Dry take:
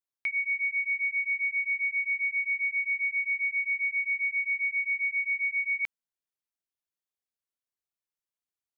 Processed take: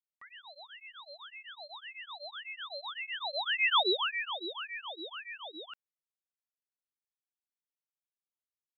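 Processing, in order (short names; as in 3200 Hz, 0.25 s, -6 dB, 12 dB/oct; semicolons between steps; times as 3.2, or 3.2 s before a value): tape start at the beginning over 0.36 s; Doppler pass-by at 3.76, 19 m/s, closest 2.7 m; in parallel at +0.5 dB: vocal rider within 4 dB 2 s; on the sum: vibrato 1.4 Hz 10 cents; ring modulator with a swept carrier 1000 Hz, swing 80%, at 1.8 Hz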